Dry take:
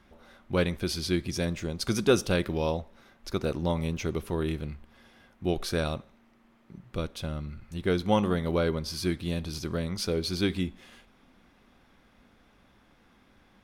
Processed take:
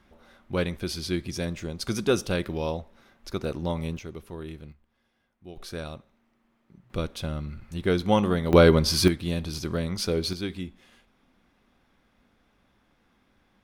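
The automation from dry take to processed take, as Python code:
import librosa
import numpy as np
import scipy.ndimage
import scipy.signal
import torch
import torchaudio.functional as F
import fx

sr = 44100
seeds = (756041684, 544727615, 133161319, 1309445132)

y = fx.gain(x, sr, db=fx.steps((0.0, -1.0), (3.99, -8.5), (4.72, -16.0), (5.57, -7.0), (6.9, 2.5), (8.53, 11.0), (9.08, 2.5), (10.33, -5.0)))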